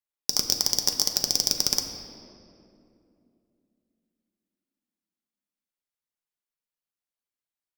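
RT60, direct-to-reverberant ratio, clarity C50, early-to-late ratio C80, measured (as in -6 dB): 2.7 s, 3.0 dB, 6.0 dB, 7.0 dB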